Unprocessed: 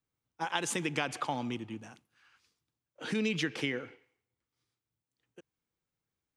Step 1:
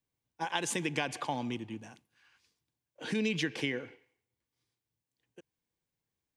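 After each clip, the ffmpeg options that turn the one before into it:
-af "bandreject=f=1.3k:w=5.3"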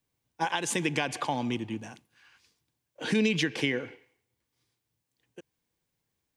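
-af "alimiter=limit=-21.5dB:level=0:latency=1:release=364,volume=6.5dB"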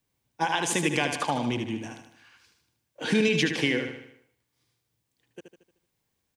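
-af "aecho=1:1:76|152|228|304|380|456:0.447|0.214|0.103|0.0494|0.0237|0.0114,volume=2.5dB"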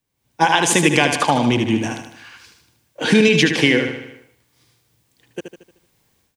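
-af "dynaudnorm=f=160:g=3:m=15dB"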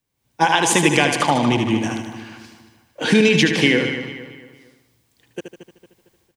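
-filter_complex "[0:a]asplit=2[a][b];[b]adelay=227,lowpass=f=4.2k:p=1,volume=-10.5dB,asplit=2[c][d];[d]adelay=227,lowpass=f=4.2k:p=1,volume=0.42,asplit=2[e][f];[f]adelay=227,lowpass=f=4.2k:p=1,volume=0.42,asplit=2[g][h];[h]adelay=227,lowpass=f=4.2k:p=1,volume=0.42[i];[a][c][e][g][i]amix=inputs=5:normalize=0,volume=-1dB"

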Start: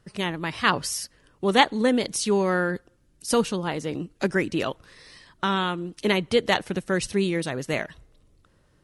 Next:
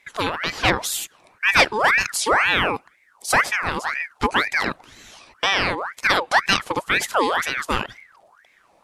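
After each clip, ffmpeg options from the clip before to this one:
-af "acontrast=79,aeval=exprs='val(0)*sin(2*PI*1400*n/s+1400*0.55/2*sin(2*PI*2*n/s))':c=same"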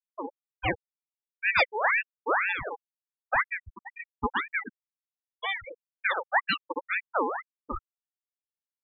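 -af "afftfilt=real='re*gte(hypot(re,im),0.355)':imag='im*gte(hypot(re,im),0.355)':win_size=1024:overlap=0.75,volume=-6.5dB"

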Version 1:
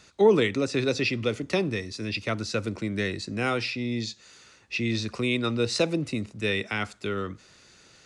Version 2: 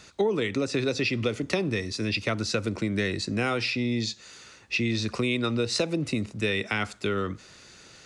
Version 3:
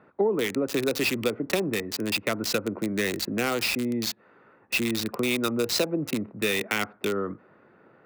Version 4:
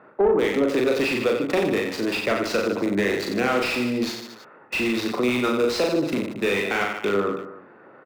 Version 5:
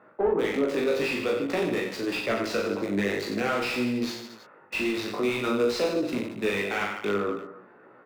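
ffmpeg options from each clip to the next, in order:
-af "acompressor=threshold=-27dB:ratio=6,volume=4.5dB"
-filter_complex "[0:a]highpass=190,acrossover=split=1500[a][b];[b]acrusher=bits=4:mix=0:aa=0.000001[c];[a][c]amix=inputs=2:normalize=0,volume=1.5dB"
-filter_complex "[0:a]aecho=1:1:40|90|152.5|230.6|328.3:0.631|0.398|0.251|0.158|0.1,asplit=2[a][b];[b]highpass=f=720:p=1,volume=17dB,asoftclip=type=tanh:threshold=-8.5dB[c];[a][c]amix=inputs=2:normalize=0,lowpass=f=1.1k:p=1,volume=-6dB"
-af "flanger=delay=16:depth=4.2:speed=0.51,volume=-1.5dB"

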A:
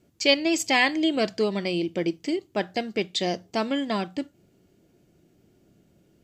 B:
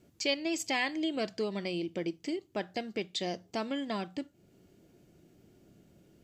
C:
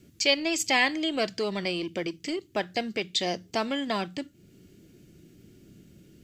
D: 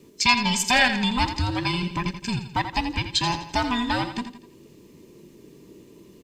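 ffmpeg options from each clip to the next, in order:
-af "acompressor=threshold=-46dB:ratio=1.5"
-filter_complex "[0:a]acrossover=split=470|1300[a][b][c];[a]alimiter=level_in=13.5dB:limit=-24dB:level=0:latency=1,volume=-13.5dB[d];[b]aeval=exprs='sgn(val(0))*max(abs(val(0))-0.00178,0)':c=same[e];[d][e][c]amix=inputs=3:normalize=0,volume=8.5dB"
-filter_complex "[0:a]afftfilt=real='real(if(between(b,1,1008),(2*floor((b-1)/24)+1)*24-b,b),0)':imag='imag(if(between(b,1,1008),(2*floor((b-1)/24)+1)*24-b,b),0)*if(between(b,1,1008),-1,1)':win_size=2048:overlap=0.75,tremolo=f=210:d=0.4,asplit=2[a][b];[b]aecho=0:1:84|168|252|336:0.316|0.133|0.0558|0.0234[c];[a][c]amix=inputs=2:normalize=0,volume=6dB"

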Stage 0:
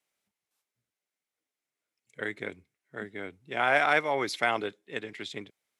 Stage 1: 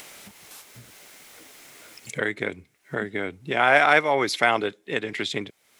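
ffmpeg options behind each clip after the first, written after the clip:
-af "acompressor=mode=upward:threshold=-27dB:ratio=2.5,volume=6.5dB"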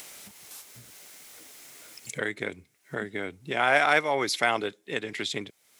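-af "bass=f=250:g=0,treble=f=4k:g=6,volume=-4.5dB"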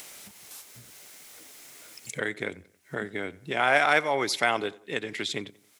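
-filter_complex "[0:a]asplit=2[a][b];[b]adelay=90,lowpass=f=2.8k:p=1,volume=-21dB,asplit=2[c][d];[d]adelay=90,lowpass=f=2.8k:p=1,volume=0.44,asplit=2[e][f];[f]adelay=90,lowpass=f=2.8k:p=1,volume=0.44[g];[a][c][e][g]amix=inputs=4:normalize=0"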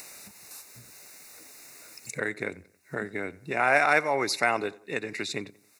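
-af "asuperstop=centerf=3200:order=8:qfactor=4"

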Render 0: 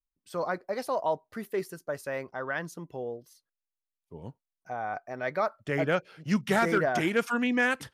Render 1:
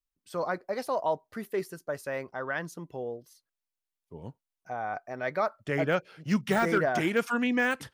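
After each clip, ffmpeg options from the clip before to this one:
-af "deesser=0.85"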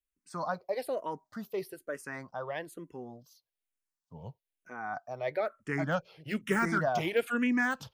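-filter_complex "[0:a]asplit=2[a][b];[b]afreqshift=-1.1[c];[a][c]amix=inputs=2:normalize=1"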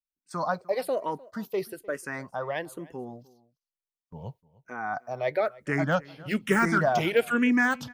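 -filter_complex "[0:a]agate=range=-17dB:threshold=-55dB:ratio=16:detection=peak,asplit=2[a][b];[b]adelay=303.2,volume=-22dB,highshelf=f=4k:g=-6.82[c];[a][c]amix=inputs=2:normalize=0,volume=5.5dB"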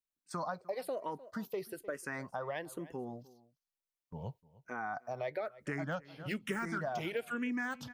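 -af "acompressor=threshold=-34dB:ratio=4,volume=-2dB"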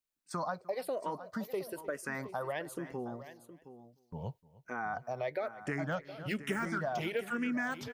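-af "aecho=1:1:717:0.211,volume=2dB"

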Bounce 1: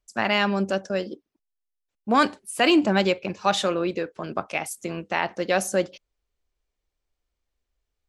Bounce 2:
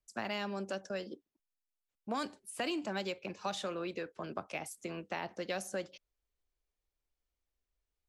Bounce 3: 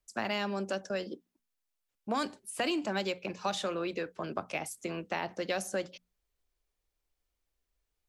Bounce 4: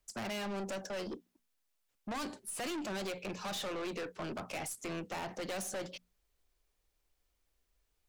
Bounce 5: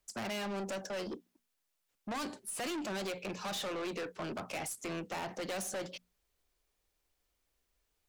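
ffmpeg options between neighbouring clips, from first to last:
-filter_complex "[0:a]acrossover=split=250|750|4200[a][b][c][d];[a]acompressor=threshold=-40dB:ratio=4[e];[b]acompressor=threshold=-32dB:ratio=4[f];[c]acompressor=threshold=-33dB:ratio=4[g];[d]acompressor=threshold=-37dB:ratio=4[h];[e][f][g][h]amix=inputs=4:normalize=0,volume=-8dB"
-af "bandreject=f=60:t=h:w=6,bandreject=f=120:t=h:w=6,bandreject=f=180:t=h:w=6,bandreject=f=240:t=h:w=6,volume=4.5dB"
-af "aeval=exprs='(tanh(112*val(0)+0.15)-tanh(0.15))/112':c=same,volume=4.5dB"
-af "lowshelf=f=66:g=-7,volume=1dB"

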